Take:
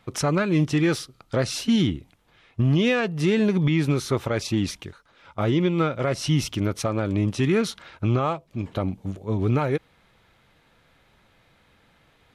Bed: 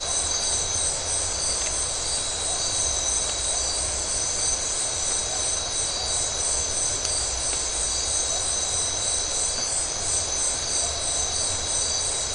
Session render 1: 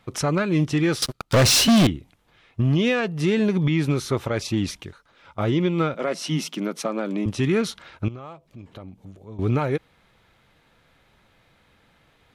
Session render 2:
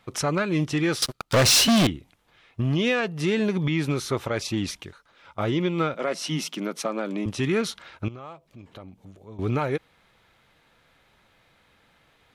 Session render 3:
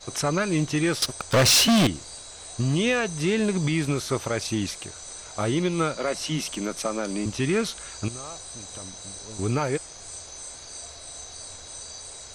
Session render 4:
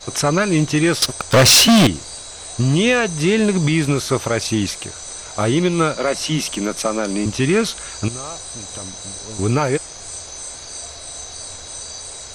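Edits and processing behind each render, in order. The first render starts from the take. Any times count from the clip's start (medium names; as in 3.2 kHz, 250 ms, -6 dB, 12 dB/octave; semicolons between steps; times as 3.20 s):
1.02–1.87 s: waveshaping leveller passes 5; 5.94–7.26 s: Chebyshev high-pass 160 Hz, order 6; 8.08–9.39 s: compression 2:1, threshold -47 dBFS
bass shelf 370 Hz -5 dB
add bed -15 dB
trim +7.5 dB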